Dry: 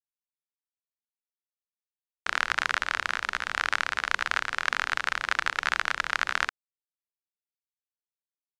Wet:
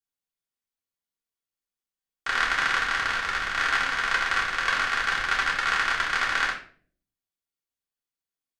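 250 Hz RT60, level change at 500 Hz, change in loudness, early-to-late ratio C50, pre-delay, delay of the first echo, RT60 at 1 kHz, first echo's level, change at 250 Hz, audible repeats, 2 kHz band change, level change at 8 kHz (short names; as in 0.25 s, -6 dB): 0.75 s, +3.0 dB, +3.5 dB, 7.5 dB, 3 ms, none, 0.40 s, none, +5.5 dB, none, +3.5 dB, +2.5 dB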